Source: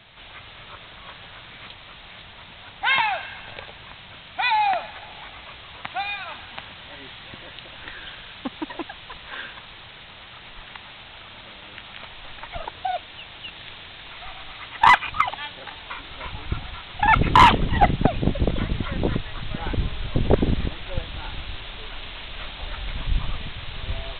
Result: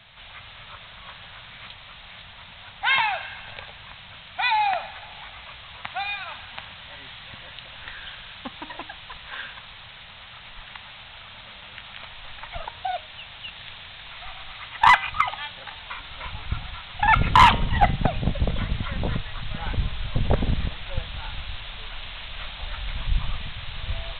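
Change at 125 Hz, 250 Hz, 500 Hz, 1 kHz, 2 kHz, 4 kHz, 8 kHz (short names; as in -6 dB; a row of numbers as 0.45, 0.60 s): -1.0 dB, -5.5 dB, -5.0 dB, -1.0 dB, -0.5 dB, 0.0 dB, n/a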